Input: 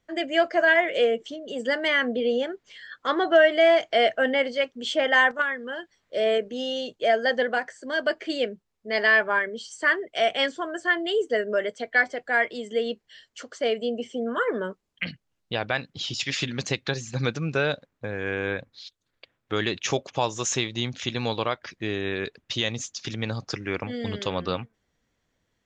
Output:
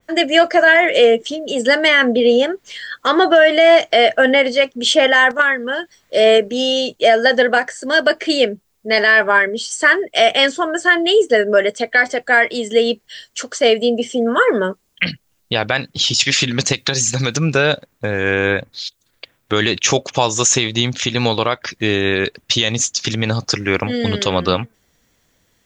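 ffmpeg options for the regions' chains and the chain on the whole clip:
-filter_complex "[0:a]asettb=1/sr,asplit=3[s0][s1][s2];[s0]atrim=end=16.724[s3];[s1]atrim=start=16.72:end=17.37,asetpts=PTS-STARTPTS,afade=t=in:d=0.004:c=qsin,afade=t=out:st=0.646:d=0.004:c=qsin,highshelf=f=3700:g=10,acompressor=threshold=0.0501:ratio=4:attack=3.2:release=140:knee=1:detection=peak[s4];[s2]atrim=start=17.366[s5];[s3][s4]acrossfade=d=0.004:c1=hsin:c2=qsin[s6];[s6][s5]acrossfade=d=0.004:c1=qsin:c2=hsin,aemphasis=mode=production:type=50kf,alimiter=level_in=4.22:limit=0.891:release=50:level=0:latency=1,adynamicequalizer=threshold=0.0501:dfrequency=3100:dqfactor=0.7:tfrequency=3100:tqfactor=0.7:attack=5:release=100:ratio=0.375:range=1.5:mode=cutabove:tftype=highshelf,volume=0.891"

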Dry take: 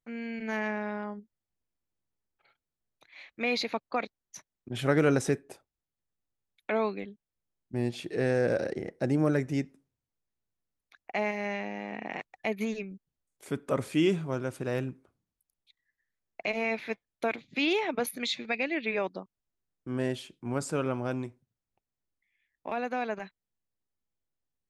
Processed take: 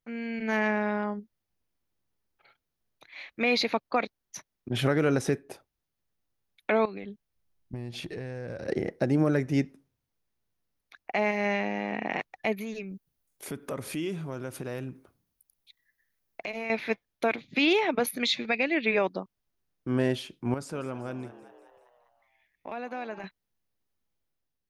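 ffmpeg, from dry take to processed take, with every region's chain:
-filter_complex "[0:a]asettb=1/sr,asplit=3[s0][s1][s2];[s0]atrim=end=6.854[s3];[s1]atrim=start=6.85:end=8.68,asetpts=PTS-STARTPTS,afade=t=in:d=0.004:c=qsin,afade=t=out:st=1.826:d=0.004:c=qsin,acompressor=threshold=0.0112:ratio=10:attack=3.2:release=140:knee=1:detection=peak,asubboost=boost=5.5:cutoff=160[s4];[s2]atrim=start=8.676[s5];[s3][s4]acrossfade=d=0.004:c1=hsin:c2=qsin[s6];[s6][s5]acrossfade=d=0.004:c1=qsin:c2=hsin,asettb=1/sr,asplit=3[s7][s8][s9];[s7]atrim=end=12.554[s10];[s8]atrim=start=12.55:end=16.7,asetpts=PTS-STARTPTS,afade=t=in:d=0.004:c=qsin,afade=t=out:st=4.146:d=0.004:c=qsin,acompressor=threshold=0.00794:ratio=2.5:attack=3.2:release=140:knee=1:detection=peak,highshelf=f=8500:g=10[s11];[s9]atrim=start=16.696[s12];[s10][s11]acrossfade=d=0.004:c1=hsin:c2=qsin[s13];[s13][s12]acrossfade=d=0.004:c1=qsin:c2=hsin,asettb=1/sr,asplit=3[s14][s15][s16];[s14]atrim=end=20.544[s17];[s15]atrim=start=20.54:end=23.24,asetpts=PTS-STARTPTS,afade=t=in:d=0.004:c=qsin,afade=t=out:st=2.696:d=0.004:c=qsin,acompressor=threshold=0.00158:ratio=1.5:attack=3.2:release=140:knee=1:detection=peak,asplit=7[s18][s19][s20][s21][s22][s23][s24];[s19]adelay=193,afreqshift=89,volume=0.178[s25];[s20]adelay=386,afreqshift=178,volume=0.104[s26];[s21]adelay=579,afreqshift=267,volume=0.0596[s27];[s22]adelay=772,afreqshift=356,volume=0.0347[s28];[s23]adelay=965,afreqshift=445,volume=0.0202[s29];[s24]adelay=1158,afreqshift=534,volume=0.0116[s30];[s18][s25][s26][s27][s28][s29][s30]amix=inputs=7:normalize=0,atrim=end_sample=119070[s31];[s16]atrim=start=23.236[s32];[s17][s31]acrossfade=d=0.004:c1=hsin:c2=qsin[s33];[s33][s32]acrossfade=d=0.004:c1=qsin:c2=hsin,equalizer=f=7700:t=o:w=0.3:g=-8.5,dynaudnorm=f=130:g=7:m=1.58,alimiter=limit=0.15:level=0:latency=1:release=307,volume=1.26"

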